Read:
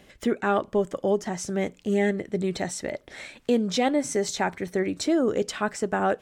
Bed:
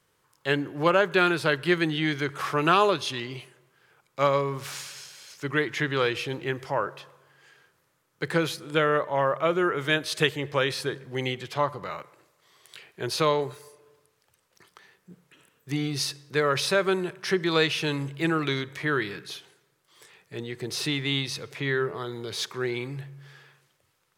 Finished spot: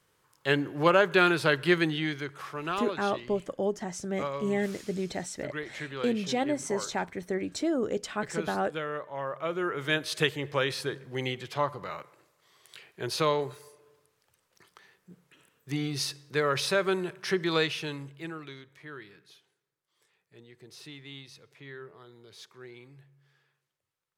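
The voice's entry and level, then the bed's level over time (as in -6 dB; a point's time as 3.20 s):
2.55 s, -5.5 dB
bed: 1.79 s -0.5 dB
2.50 s -11.5 dB
9.14 s -11.5 dB
9.96 s -3 dB
17.54 s -3 dB
18.57 s -18 dB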